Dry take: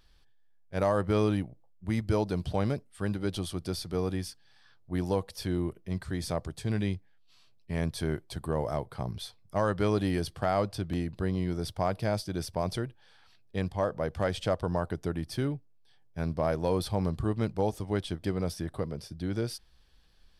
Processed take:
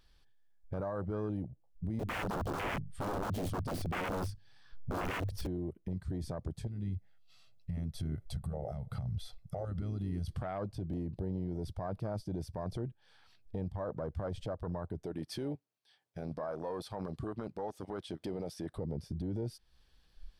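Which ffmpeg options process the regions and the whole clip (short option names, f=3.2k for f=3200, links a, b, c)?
-filter_complex "[0:a]asettb=1/sr,asplit=3[a][b][c];[a]atrim=end=1.994[d];[b]atrim=start=1.99:end=5.47,asetpts=PTS-STARTPTS,afade=t=in:d=0.004:c=qsin,afade=t=out:st=3.476:d=0.004:c=qsin,lowshelf=f=200:g=7.5,bandreject=f=50:t=h:w=6,bandreject=f=100:t=h:w=6,bandreject=f=150:t=h:w=6,aeval=exprs='(mod(29.9*val(0)+1,2)-1)/29.9':c=same[e];[c]atrim=start=5.466[f];[d][e]acrossfade=d=0.004:c1=hsin:c2=qsin[g];[g][f]acrossfade=d=0.004:c1=qsin:c2=hsin,asettb=1/sr,asplit=3[h][i][j];[h]atrim=end=6.674[k];[i]atrim=start=6.67:end=10.29,asetpts=PTS-STARTPTS,afade=t=in:d=0.004:c=qsin,afade=t=out:st=3.616:d=0.004:c=qsin,aecho=1:1:1.5:0.64,atrim=end_sample=159642,acompressor=threshold=-40dB:ratio=10:attack=3.2:release=140:knee=1:detection=peak[l];[j]atrim=start=10.286[m];[k][l]acrossfade=d=0.004:c1=hsin:c2=qsin[n];[n][m]acrossfade=d=0.004:c1=qsin:c2=hsin,asettb=1/sr,asplit=3[o][p][q];[o]atrim=end=15.044[r];[p]atrim=start=15.04:end=18.78,asetpts=PTS-STARTPTS,afade=t=in:d=0.004:c=qsin,afade=t=out:st=3.736:d=0.004:c=qsin,highpass=f=510:p=1,equalizer=f=2.8k:w=0.34:g=4[s];[q]atrim=start=18.776[t];[r][s]acrossfade=d=0.004:c1=hsin:c2=qsin[u];[u][t]acrossfade=d=0.004:c1=qsin:c2=hsin,afwtdn=0.0178,acompressor=threshold=-46dB:ratio=3,alimiter=level_in=18.5dB:limit=-24dB:level=0:latency=1:release=14,volume=-18.5dB,volume=13dB"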